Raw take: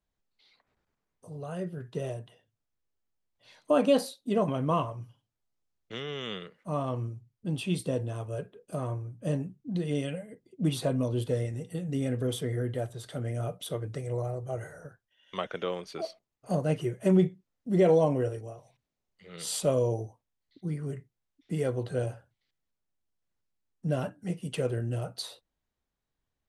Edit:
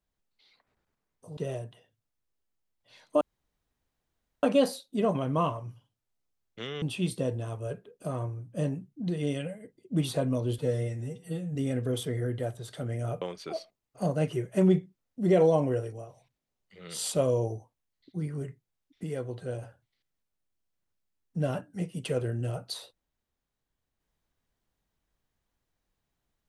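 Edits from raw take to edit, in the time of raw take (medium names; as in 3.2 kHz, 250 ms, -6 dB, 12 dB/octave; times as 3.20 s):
1.37–1.92 s: delete
3.76 s: insert room tone 1.22 s
6.15–7.50 s: delete
11.26–11.91 s: stretch 1.5×
13.57–15.70 s: delete
21.52–22.11 s: gain -5 dB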